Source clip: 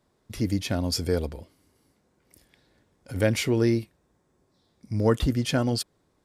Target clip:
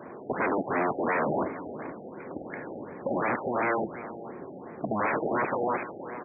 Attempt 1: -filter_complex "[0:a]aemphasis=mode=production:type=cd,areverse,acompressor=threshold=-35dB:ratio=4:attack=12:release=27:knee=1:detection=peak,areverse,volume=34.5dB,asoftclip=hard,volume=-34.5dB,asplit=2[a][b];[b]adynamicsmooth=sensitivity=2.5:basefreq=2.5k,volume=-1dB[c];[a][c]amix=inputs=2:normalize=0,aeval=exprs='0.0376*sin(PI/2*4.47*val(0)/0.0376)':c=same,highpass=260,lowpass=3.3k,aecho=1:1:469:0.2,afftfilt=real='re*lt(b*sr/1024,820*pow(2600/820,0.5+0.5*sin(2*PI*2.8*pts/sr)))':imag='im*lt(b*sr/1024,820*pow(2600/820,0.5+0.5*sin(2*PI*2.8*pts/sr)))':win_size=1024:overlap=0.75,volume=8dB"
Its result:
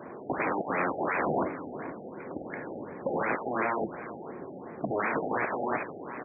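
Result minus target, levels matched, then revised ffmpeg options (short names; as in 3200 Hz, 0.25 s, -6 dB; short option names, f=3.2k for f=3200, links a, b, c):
compressor: peak gain reduction -5 dB
-filter_complex "[0:a]aemphasis=mode=production:type=cd,areverse,acompressor=threshold=-41.5dB:ratio=4:attack=12:release=27:knee=1:detection=peak,areverse,volume=34.5dB,asoftclip=hard,volume=-34.5dB,asplit=2[a][b];[b]adynamicsmooth=sensitivity=2.5:basefreq=2.5k,volume=-1dB[c];[a][c]amix=inputs=2:normalize=0,aeval=exprs='0.0376*sin(PI/2*4.47*val(0)/0.0376)':c=same,highpass=260,lowpass=3.3k,aecho=1:1:469:0.2,afftfilt=real='re*lt(b*sr/1024,820*pow(2600/820,0.5+0.5*sin(2*PI*2.8*pts/sr)))':imag='im*lt(b*sr/1024,820*pow(2600/820,0.5+0.5*sin(2*PI*2.8*pts/sr)))':win_size=1024:overlap=0.75,volume=8dB"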